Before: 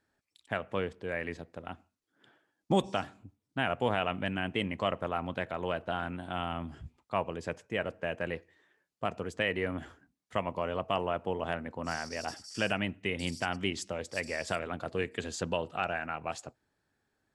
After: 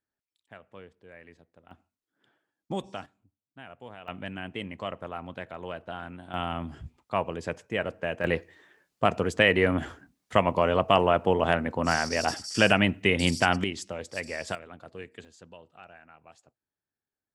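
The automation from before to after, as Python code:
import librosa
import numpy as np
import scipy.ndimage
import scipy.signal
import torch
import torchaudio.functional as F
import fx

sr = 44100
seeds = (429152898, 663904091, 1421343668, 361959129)

y = fx.gain(x, sr, db=fx.steps((0.0, -14.5), (1.71, -6.0), (3.06, -15.5), (4.08, -4.0), (6.34, 3.5), (8.24, 10.0), (13.64, 0.5), (14.55, -9.0), (15.25, -17.0)))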